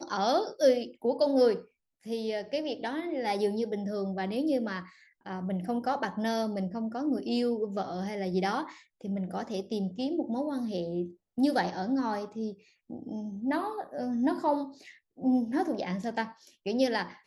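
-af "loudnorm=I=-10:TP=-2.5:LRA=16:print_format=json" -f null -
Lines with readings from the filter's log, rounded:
"input_i" : "-31.0",
"input_tp" : "-12.1",
"input_lra" : "2.3",
"input_thresh" : "-41.3",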